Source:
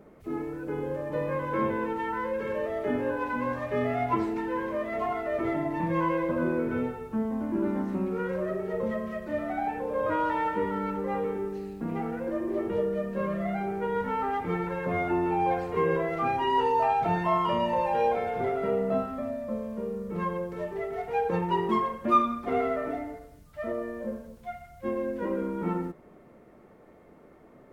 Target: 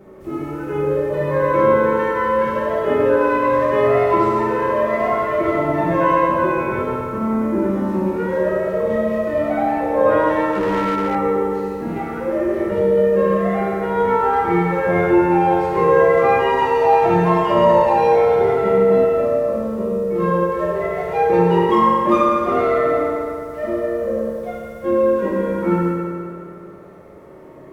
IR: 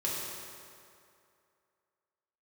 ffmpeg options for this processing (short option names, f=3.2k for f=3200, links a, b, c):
-filter_complex "[1:a]atrim=start_sample=2205[a];[0:a][a]afir=irnorm=-1:irlink=0,asettb=1/sr,asplit=3[b][c][d];[b]atrim=end=10.524[e];[c]atrim=start=10.52:end=11.15,asetpts=PTS-STARTPTS,afade=t=in:d=0.004:c=qsin,afade=t=out:st=0.626:d=0.004:c=qsin,asoftclip=type=hard:threshold=-20.5dB[f];[d]atrim=start=11.146[g];[e][f]acrossfade=d=0.004:c1=hsin:c2=qsin[h];[h][g]acrossfade=d=0.004:c1=qsin:c2=hsin,volume=5.5dB"